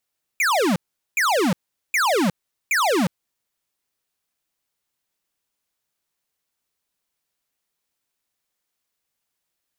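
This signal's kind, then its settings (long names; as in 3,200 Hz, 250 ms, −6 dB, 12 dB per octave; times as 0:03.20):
repeated falling chirps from 2,500 Hz, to 160 Hz, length 0.36 s square, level −19 dB, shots 4, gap 0.41 s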